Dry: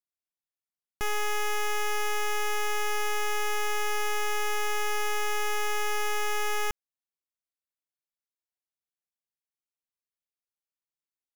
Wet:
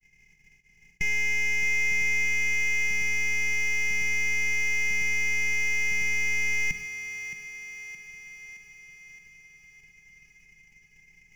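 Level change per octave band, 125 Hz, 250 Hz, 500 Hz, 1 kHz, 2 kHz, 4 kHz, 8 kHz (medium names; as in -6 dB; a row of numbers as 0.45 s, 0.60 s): +7.5 dB, no reading, -15.0 dB, -20.5 dB, +9.0 dB, -4.5 dB, +1.5 dB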